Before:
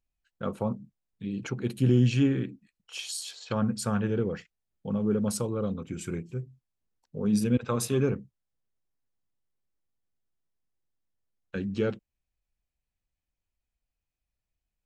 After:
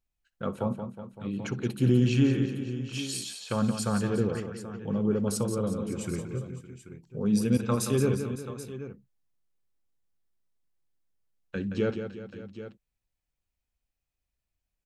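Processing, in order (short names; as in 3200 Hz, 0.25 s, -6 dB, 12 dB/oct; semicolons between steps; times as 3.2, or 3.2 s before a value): tapped delay 61/173/364/560/783 ms -20/-8.5/-15/-17/-13.5 dB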